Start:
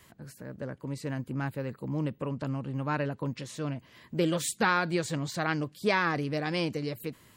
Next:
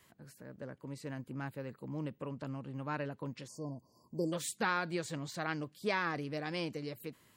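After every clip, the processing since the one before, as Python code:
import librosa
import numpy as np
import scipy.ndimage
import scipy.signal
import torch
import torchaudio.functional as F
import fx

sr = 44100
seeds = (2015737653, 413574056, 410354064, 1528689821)

y = fx.spec_erase(x, sr, start_s=3.48, length_s=0.85, low_hz=1100.0, high_hz=4400.0)
y = fx.low_shelf(y, sr, hz=89.0, db=-8.0)
y = y * 10.0 ** (-7.0 / 20.0)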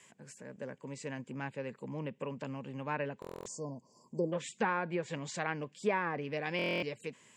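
y = fx.env_lowpass_down(x, sr, base_hz=1400.0, full_db=-31.0)
y = fx.cabinet(y, sr, low_hz=200.0, low_slope=12, high_hz=8600.0, hz=(310.0, 680.0, 1300.0, 2500.0, 4200.0, 7400.0), db=(-9, -5, -9, 4, -8, 9))
y = fx.buffer_glitch(y, sr, at_s=(3.2, 6.57), block=1024, repeats=10)
y = y * 10.0 ** (6.0 / 20.0)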